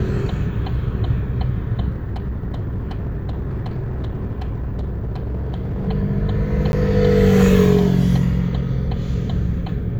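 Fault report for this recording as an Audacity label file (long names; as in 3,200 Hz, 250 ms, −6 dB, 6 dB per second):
1.900000	5.890000	clipping −21 dBFS
6.720000	6.730000	drop-out 11 ms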